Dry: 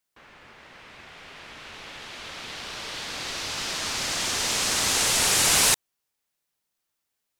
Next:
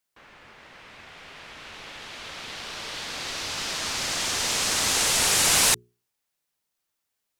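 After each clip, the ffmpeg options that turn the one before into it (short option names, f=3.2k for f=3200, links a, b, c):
-af "bandreject=f=60:t=h:w=6,bandreject=f=120:t=h:w=6,bandreject=f=180:t=h:w=6,bandreject=f=240:t=h:w=6,bandreject=f=300:t=h:w=6,bandreject=f=360:t=h:w=6,bandreject=f=420:t=h:w=6"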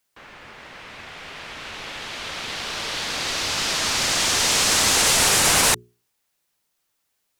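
-filter_complex "[0:a]acrossover=split=470|2000[a][b][c];[c]alimiter=limit=-15.5dB:level=0:latency=1:release=69[d];[a][b][d]amix=inputs=3:normalize=0,asoftclip=type=tanh:threshold=-15dB,volume=7dB"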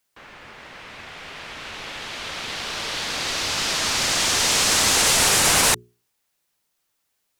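-af anull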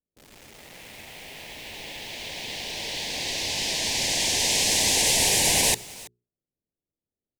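-filter_complex "[0:a]asuperstop=centerf=1300:order=4:qfactor=1.3,aecho=1:1:329:0.0891,acrossover=split=510[a][b];[b]acrusher=bits=6:mix=0:aa=0.000001[c];[a][c]amix=inputs=2:normalize=0,volume=-3dB"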